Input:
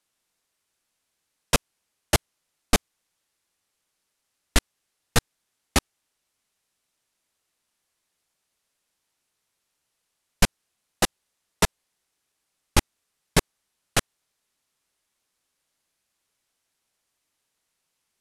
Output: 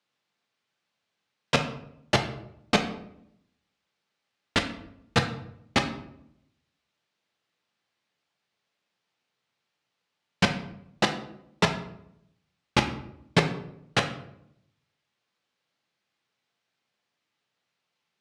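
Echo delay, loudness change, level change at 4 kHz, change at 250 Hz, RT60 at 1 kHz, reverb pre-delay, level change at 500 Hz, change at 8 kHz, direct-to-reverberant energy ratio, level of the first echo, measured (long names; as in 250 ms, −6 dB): no echo audible, −2.0 dB, −0.5 dB, +1.5 dB, 0.70 s, 3 ms, +1.0 dB, −11.0 dB, 4.0 dB, no echo audible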